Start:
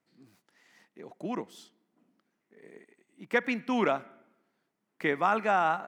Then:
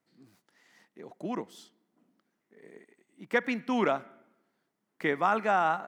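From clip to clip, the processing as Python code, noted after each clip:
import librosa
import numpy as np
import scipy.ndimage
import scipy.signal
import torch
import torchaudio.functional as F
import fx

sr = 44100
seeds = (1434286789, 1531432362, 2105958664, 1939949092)

y = fx.peak_eq(x, sr, hz=2500.0, db=-3.0, octaves=0.3)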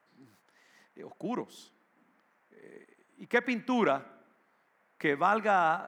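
y = fx.dmg_noise_band(x, sr, seeds[0], low_hz=450.0, high_hz=2000.0, level_db=-71.0)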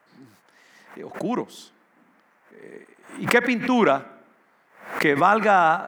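y = fx.pre_swell(x, sr, db_per_s=120.0)
y = y * librosa.db_to_amplitude(8.5)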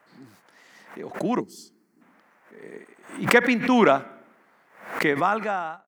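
y = fx.fade_out_tail(x, sr, length_s=1.18)
y = fx.spec_box(y, sr, start_s=1.4, length_s=0.62, low_hz=450.0, high_hz=4100.0, gain_db=-16)
y = y * librosa.db_to_amplitude(1.0)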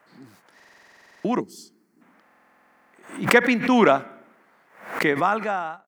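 y = fx.buffer_glitch(x, sr, at_s=(0.55, 2.24), block=2048, repeats=14)
y = y * librosa.db_to_amplitude(1.0)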